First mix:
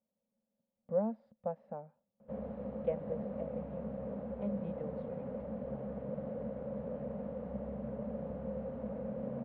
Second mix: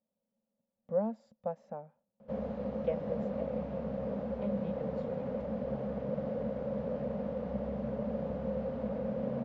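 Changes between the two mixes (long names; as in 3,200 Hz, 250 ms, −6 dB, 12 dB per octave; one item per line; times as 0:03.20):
background +4.0 dB
master: remove high-frequency loss of the air 400 metres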